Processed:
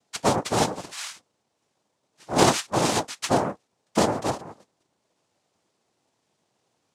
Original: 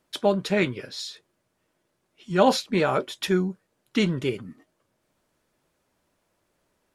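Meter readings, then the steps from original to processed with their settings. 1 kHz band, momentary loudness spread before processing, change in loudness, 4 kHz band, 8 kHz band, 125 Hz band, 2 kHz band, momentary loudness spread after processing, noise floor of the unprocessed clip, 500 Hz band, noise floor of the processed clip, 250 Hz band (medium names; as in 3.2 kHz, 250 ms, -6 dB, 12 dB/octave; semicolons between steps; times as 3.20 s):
+4.0 dB, 14 LU, +0.5 dB, +1.5 dB, +11.0 dB, -0.5 dB, -1.0 dB, 14 LU, -75 dBFS, -1.5 dB, -76 dBFS, -2.0 dB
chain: noise-vocoded speech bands 2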